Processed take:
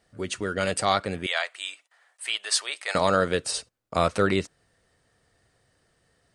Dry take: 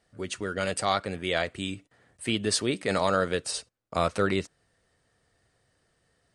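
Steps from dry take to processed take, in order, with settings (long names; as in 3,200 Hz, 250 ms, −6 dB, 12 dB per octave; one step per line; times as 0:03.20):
0:01.26–0:02.95: high-pass filter 760 Hz 24 dB per octave
level +3 dB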